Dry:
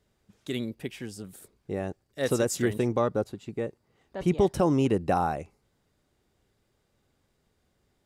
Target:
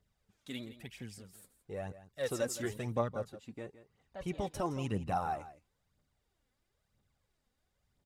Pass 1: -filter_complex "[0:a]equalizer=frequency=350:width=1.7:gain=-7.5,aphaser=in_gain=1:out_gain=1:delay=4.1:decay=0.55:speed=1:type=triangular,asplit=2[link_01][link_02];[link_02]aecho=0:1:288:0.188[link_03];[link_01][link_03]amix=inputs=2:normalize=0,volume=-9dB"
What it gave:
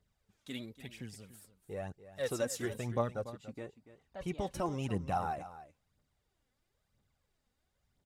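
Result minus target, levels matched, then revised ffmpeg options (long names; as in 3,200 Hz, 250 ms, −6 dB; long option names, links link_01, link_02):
echo 122 ms late
-filter_complex "[0:a]equalizer=frequency=350:width=1.7:gain=-7.5,aphaser=in_gain=1:out_gain=1:delay=4.1:decay=0.55:speed=1:type=triangular,asplit=2[link_01][link_02];[link_02]aecho=0:1:166:0.188[link_03];[link_01][link_03]amix=inputs=2:normalize=0,volume=-9dB"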